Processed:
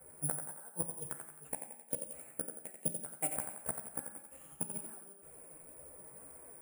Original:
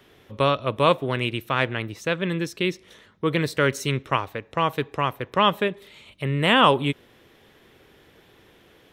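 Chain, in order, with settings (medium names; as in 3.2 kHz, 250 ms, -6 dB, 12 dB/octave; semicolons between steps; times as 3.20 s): level-controlled noise filter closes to 1.2 kHz, open at -18 dBFS; low-pass 1.6 kHz 24 dB/octave; low-pass that closes with the level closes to 1.2 kHz, closed at -16 dBFS; flange 1.4 Hz, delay 1.7 ms, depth 7.6 ms, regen +14%; inverted gate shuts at -23 dBFS, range -36 dB; chorus voices 2, 0.29 Hz, delay 18 ms, depth 1.4 ms; careless resampling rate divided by 6×, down none, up zero stuff; thinning echo 119 ms, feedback 51%, high-pass 170 Hz, level -7 dB; gated-style reverb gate 430 ms falling, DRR 8.5 dB; speed mistake 33 rpm record played at 45 rpm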